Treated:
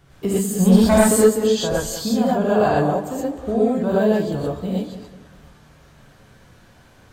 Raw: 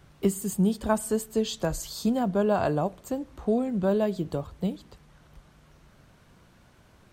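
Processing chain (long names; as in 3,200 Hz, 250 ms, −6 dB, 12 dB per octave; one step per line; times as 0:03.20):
0:00.56–0:01.17: leveller curve on the samples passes 2
on a send: tape delay 192 ms, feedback 44%, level −11 dB, low-pass 2,300 Hz
on the sum: reverb whose tail is shaped and stops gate 150 ms rising, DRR −7 dB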